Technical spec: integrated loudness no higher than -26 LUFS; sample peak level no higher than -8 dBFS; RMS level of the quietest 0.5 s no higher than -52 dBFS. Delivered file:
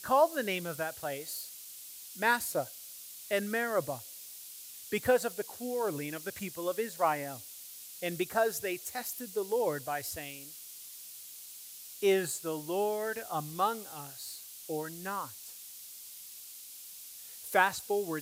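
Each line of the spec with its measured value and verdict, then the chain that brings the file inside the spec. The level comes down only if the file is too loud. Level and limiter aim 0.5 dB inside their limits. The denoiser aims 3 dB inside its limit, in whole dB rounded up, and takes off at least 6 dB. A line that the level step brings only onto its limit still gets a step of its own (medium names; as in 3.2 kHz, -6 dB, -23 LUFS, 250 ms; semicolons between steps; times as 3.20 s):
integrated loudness -33.5 LUFS: pass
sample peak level -11.5 dBFS: pass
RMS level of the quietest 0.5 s -48 dBFS: fail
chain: noise reduction 7 dB, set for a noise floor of -48 dBFS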